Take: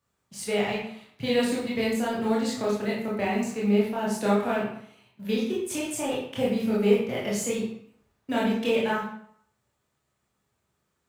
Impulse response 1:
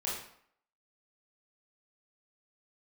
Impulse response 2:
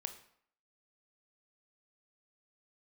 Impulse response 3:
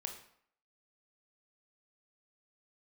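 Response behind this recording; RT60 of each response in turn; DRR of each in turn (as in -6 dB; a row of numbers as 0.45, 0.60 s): 1; 0.65, 0.65, 0.65 s; -6.5, 7.5, 3.5 dB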